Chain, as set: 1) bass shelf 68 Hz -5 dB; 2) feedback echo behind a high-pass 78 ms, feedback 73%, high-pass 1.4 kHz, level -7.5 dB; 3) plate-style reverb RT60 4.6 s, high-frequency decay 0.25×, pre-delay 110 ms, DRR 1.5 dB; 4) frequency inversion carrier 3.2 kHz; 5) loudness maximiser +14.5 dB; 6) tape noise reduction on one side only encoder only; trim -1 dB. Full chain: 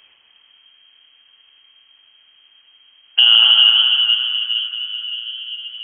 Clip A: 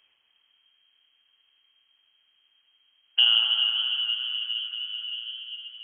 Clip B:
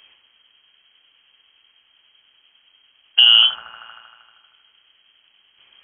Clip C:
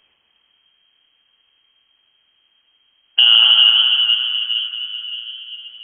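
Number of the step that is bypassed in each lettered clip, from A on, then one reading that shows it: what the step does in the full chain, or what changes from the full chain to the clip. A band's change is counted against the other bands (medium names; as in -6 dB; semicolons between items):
5, crest factor change +4.5 dB; 3, momentary loudness spread change -9 LU; 6, momentary loudness spread change +3 LU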